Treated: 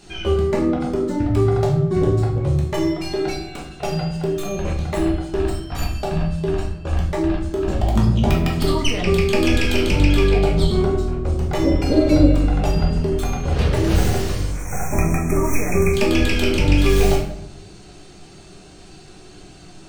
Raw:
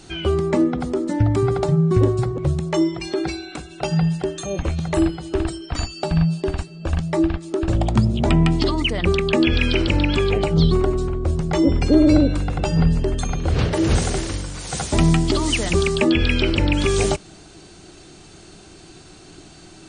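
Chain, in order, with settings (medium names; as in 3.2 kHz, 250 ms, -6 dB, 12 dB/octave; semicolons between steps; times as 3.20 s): tracing distortion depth 0.12 ms; spectral selection erased 14.50–15.94 s, 2.6–5.5 kHz; simulated room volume 170 m³, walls mixed, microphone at 1.3 m; trim -4.5 dB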